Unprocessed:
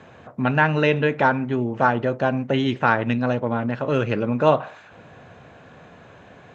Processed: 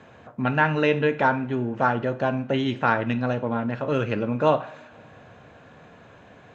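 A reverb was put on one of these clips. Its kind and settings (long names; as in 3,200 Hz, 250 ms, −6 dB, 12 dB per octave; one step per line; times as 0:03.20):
coupled-rooms reverb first 0.42 s, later 2.7 s, from −21 dB, DRR 11 dB
level −3 dB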